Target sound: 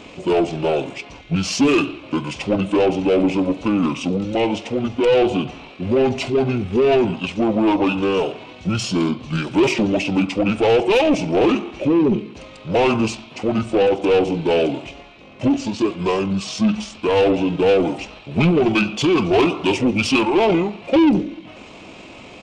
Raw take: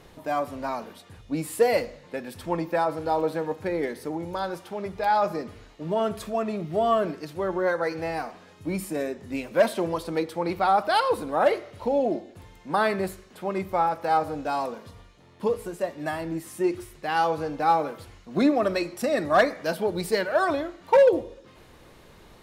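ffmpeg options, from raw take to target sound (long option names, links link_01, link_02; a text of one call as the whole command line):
ffmpeg -i in.wav -filter_complex "[0:a]asplit=2[link_01][link_02];[link_02]highpass=frequency=720:poles=1,volume=24dB,asoftclip=type=tanh:threshold=-6.5dB[link_03];[link_01][link_03]amix=inputs=2:normalize=0,lowpass=frequency=2100:poles=1,volume=-6dB,highshelf=frequency=3600:width_type=q:width=3:gain=7,asetrate=26222,aresample=44100,atempo=1.68179" out.wav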